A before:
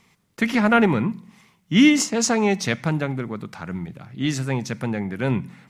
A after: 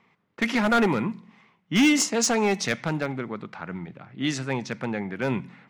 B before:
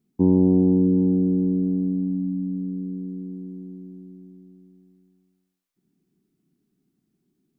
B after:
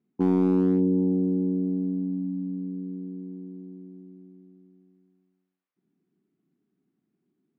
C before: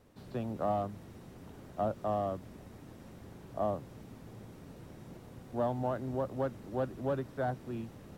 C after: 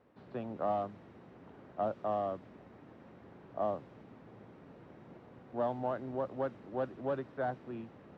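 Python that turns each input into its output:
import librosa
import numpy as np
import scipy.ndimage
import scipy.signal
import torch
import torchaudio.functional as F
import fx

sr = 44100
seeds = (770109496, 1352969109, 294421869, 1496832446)

y = fx.highpass(x, sr, hz=280.0, slope=6)
y = fx.env_lowpass(y, sr, base_hz=2100.0, full_db=-18.0)
y = np.clip(10.0 ** (15.0 / 20.0) * y, -1.0, 1.0) / 10.0 ** (15.0 / 20.0)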